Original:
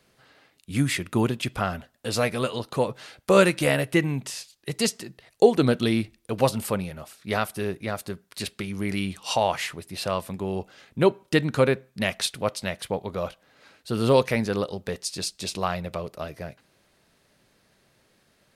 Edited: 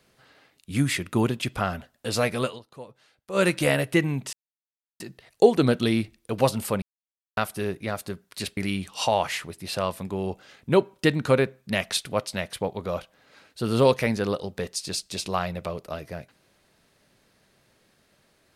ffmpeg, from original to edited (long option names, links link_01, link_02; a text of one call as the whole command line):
ffmpeg -i in.wav -filter_complex "[0:a]asplit=8[link_01][link_02][link_03][link_04][link_05][link_06][link_07][link_08];[link_01]atrim=end=2.6,asetpts=PTS-STARTPTS,afade=type=out:start_time=2.44:duration=0.16:silence=0.133352[link_09];[link_02]atrim=start=2.6:end=3.32,asetpts=PTS-STARTPTS,volume=-17.5dB[link_10];[link_03]atrim=start=3.32:end=4.33,asetpts=PTS-STARTPTS,afade=type=in:duration=0.16:silence=0.133352,afade=type=out:start_time=1.006:duration=0.004:curve=hsin[link_11];[link_04]atrim=start=4.33:end=5,asetpts=PTS-STARTPTS,volume=0[link_12];[link_05]atrim=start=5:end=6.82,asetpts=PTS-STARTPTS,afade=type=in:duration=0.004:curve=hsin,afade=type=out:start_time=1.816:duration=0.004:curve=hsin[link_13];[link_06]atrim=start=6.82:end=7.37,asetpts=PTS-STARTPTS,volume=0[link_14];[link_07]atrim=start=7.37:end=8.572,asetpts=PTS-STARTPTS,afade=type=in:duration=0.004:curve=hsin[link_15];[link_08]atrim=start=8.858[link_16];[link_09][link_10][link_11][link_12][link_13][link_14][link_15]concat=n=7:v=0:a=1[link_17];[link_17][link_16]acrossfade=duration=0.004:curve1=hsin:curve2=hsin" out.wav